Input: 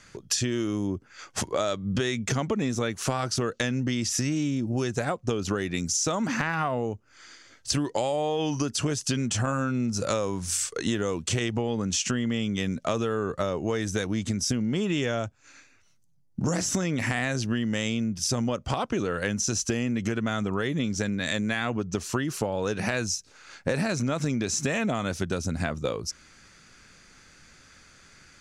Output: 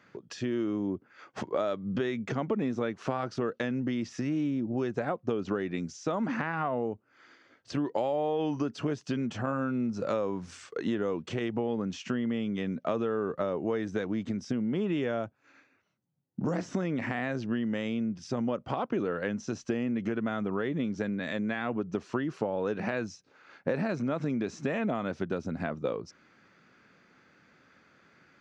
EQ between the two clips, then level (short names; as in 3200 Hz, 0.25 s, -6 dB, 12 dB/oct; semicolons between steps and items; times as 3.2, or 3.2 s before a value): HPF 190 Hz 12 dB/oct; tape spacing loss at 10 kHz 35 dB; 0.0 dB